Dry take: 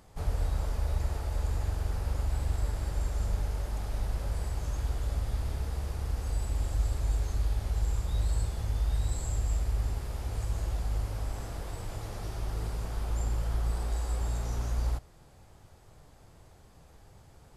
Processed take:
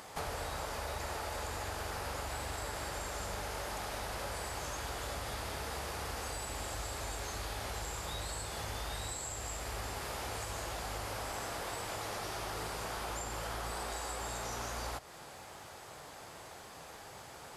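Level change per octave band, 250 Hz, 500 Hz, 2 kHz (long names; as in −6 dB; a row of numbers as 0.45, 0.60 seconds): −3.5, +2.5, +7.5 decibels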